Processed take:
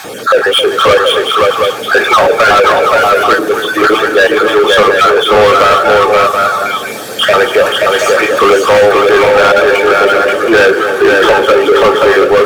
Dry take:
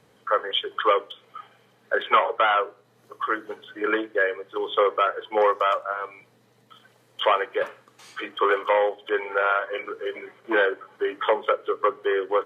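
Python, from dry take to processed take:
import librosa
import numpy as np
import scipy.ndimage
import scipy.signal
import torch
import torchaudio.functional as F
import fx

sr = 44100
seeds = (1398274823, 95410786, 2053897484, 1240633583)

p1 = fx.spec_dropout(x, sr, seeds[0], share_pct=22)
p2 = fx.bass_treble(p1, sr, bass_db=-10, treble_db=12)
p3 = fx.power_curve(p2, sr, exponent=0.5)
p4 = fx.high_shelf(p3, sr, hz=3200.0, db=-9.0)
p5 = fx.notch_comb(p4, sr, f0_hz=1000.0)
p6 = fx.echo_multitap(p5, sr, ms=(268, 530, 728), db=(-12.0, -3.5, -7.0))
p7 = fx.fold_sine(p6, sr, drive_db=9, ceiling_db=-6.5)
p8 = p6 + (p7 * librosa.db_to_amplitude(-10.0))
y = p8 * librosa.db_to_amplitude(6.0)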